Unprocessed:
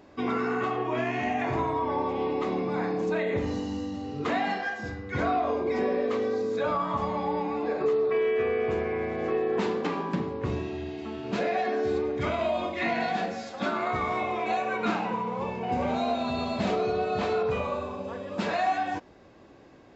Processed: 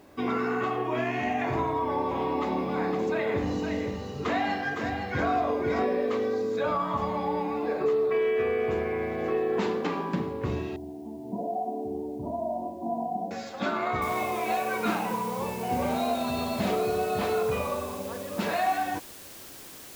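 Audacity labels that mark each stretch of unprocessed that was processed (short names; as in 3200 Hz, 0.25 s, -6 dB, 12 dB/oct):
1.600000	5.850000	echo 0.513 s -5.5 dB
10.760000	13.310000	rippled Chebyshev low-pass 1000 Hz, ripple 9 dB
14.020000	14.020000	noise floor step -69 dB -46 dB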